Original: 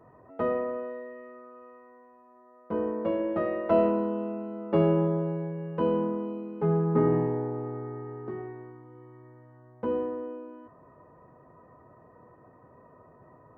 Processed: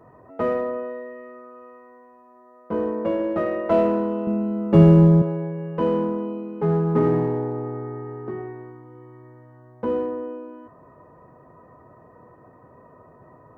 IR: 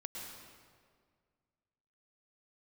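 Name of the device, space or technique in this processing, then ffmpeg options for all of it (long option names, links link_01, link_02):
parallel distortion: -filter_complex "[0:a]asplit=2[link_01][link_02];[link_02]asoftclip=type=hard:threshold=-25.5dB,volume=-9dB[link_03];[link_01][link_03]amix=inputs=2:normalize=0,asettb=1/sr,asplit=3[link_04][link_05][link_06];[link_04]atrim=end=4.274[link_07];[link_05]atrim=start=4.27:end=5.22,asetpts=PTS-STARTPTS,afade=type=in:duration=0.004:curve=qsin,afade=type=out:start_time=0.946:duration=0.004:curve=qsin,bass=frequency=250:gain=14,treble=frequency=4000:gain=9[link_08];[link_06]atrim=start=5.216[link_09];[link_07][link_08]acrossfade=duration=0.004:curve1=hsin:curve2=qsin[link_10];[link_10][link_09]acrossfade=duration=0.004:curve1=qsin:curve2=hsin,volume=2.5dB"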